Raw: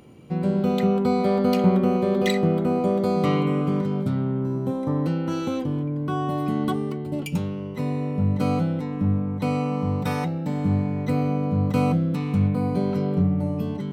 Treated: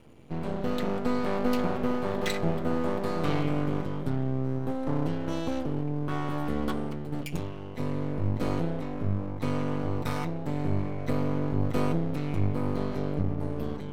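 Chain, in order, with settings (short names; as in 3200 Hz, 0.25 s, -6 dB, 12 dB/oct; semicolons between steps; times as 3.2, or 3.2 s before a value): notch comb 190 Hz; half-wave rectifier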